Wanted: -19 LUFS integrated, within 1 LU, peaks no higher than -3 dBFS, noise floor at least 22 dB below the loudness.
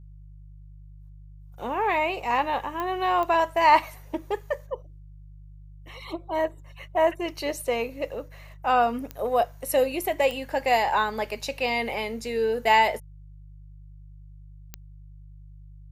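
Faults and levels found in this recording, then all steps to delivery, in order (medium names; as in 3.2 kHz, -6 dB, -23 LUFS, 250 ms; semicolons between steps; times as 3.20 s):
clicks found 5; hum 50 Hz; highest harmonic 150 Hz; hum level -43 dBFS; loudness -25.5 LUFS; peak level -6.0 dBFS; loudness target -19.0 LUFS
-> de-click; de-hum 50 Hz, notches 3; trim +6.5 dB; peak limiter -3 dBFS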